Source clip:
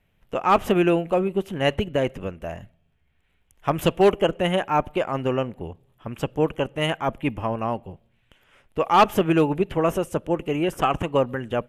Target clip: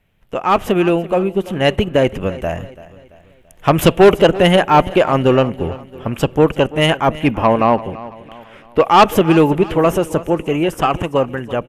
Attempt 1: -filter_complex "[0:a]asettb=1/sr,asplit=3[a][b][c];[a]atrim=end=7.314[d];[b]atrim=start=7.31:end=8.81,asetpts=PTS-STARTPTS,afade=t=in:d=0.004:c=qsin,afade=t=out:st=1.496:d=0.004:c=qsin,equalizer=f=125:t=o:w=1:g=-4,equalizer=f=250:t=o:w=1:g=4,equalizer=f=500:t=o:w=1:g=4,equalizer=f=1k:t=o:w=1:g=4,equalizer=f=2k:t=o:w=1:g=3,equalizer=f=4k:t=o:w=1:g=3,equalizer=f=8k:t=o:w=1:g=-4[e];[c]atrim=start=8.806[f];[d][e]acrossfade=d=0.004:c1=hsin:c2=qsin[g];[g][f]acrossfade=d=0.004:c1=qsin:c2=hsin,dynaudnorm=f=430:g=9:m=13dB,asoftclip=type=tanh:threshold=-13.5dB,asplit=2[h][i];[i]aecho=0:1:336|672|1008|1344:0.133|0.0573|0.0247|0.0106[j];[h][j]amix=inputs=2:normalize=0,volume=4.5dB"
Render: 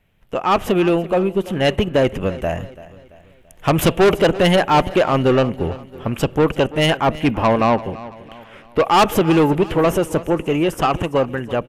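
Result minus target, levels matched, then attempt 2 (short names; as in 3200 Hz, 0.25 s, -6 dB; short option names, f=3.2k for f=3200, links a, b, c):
soft clip: distortion +7 dB
-filter_complex "[0:a]asettb=1/sr,asplit=3[a][b][c];[a]atrim=end=7.314[d];[b]atrim=start=7.31:end=8.81,asetpts=PTS-STARTPTS,afade=t=in:d=0.004:c=qsin,afade=t=out:st=1.496:d=0.004:c=qsin,equalizer=f=125:t=o:w=1:g=-4,equalizer=f=250:t=o:w=1:g=4,equalizer=f=500:t=o:w=1:g=4,equalizer=f=1k:t=o:w=1:g=4,equalizer=f=2k:t=o:w=1:g=3,equalizer=f=4k:t=o:w=1:g=3,equalizer=f=8k:t=o:w=1:g=-4[e];[c]atrim=start=8.806[f];[d][e]acrossfade=d=0.004:c1=hsin:c2=qsin[g];[g][f]acrossfade=d=0.004:c1=qsin:c2=hsin,dynaudnorm=f=430:g=9:m=13dB,asoftclip=type=tanh:threshold=-6.5dB,asplit=2[h][i];[i]aecho=0:1:336|672|1008|1344:0.133|0.0573|0.0247|0.0106[j];[h][j]amix=inputs=2:normalize=0,volume=4.5dB"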